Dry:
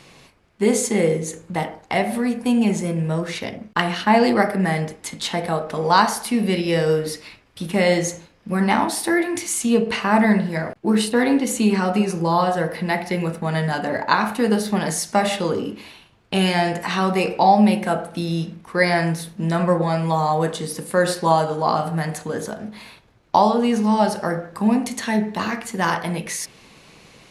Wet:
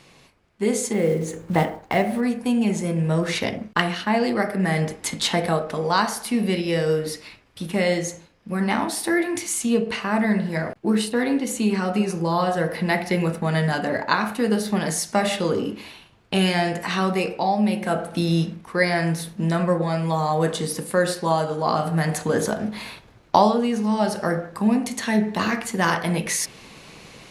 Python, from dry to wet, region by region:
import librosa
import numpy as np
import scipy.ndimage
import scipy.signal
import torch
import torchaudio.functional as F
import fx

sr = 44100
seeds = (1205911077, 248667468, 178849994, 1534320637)

y = fx.chain(x, sr, fx.block_float(bits=5),
    fx.high_shelf(hz=2900.0, db=-9.5), at=(0.93, 2.23))
y = fx.dynamic_eq(y, sr, hz=880.0, q=3.0, threshold_db=-33.0, ratio=4.0, max_db=-4)
y = fx.rider(y, sr, range_db=10, speed_s=0.5)
y = y * librosa.db_to_amplitude(-1.5)